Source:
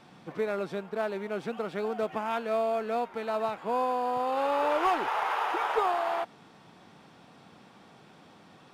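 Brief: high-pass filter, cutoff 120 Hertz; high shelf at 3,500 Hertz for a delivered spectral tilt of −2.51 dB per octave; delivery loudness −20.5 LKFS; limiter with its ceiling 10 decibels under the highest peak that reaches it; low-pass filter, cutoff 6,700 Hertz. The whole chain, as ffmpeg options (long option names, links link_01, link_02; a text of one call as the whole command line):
ffmpeg -i in.wav -af "highpass=120,lowpass=6700,highshelf=frequency=3500:gain=5,volume=13.5dB,alimiter=limit=-11dB:level=0:latency=1" out.wav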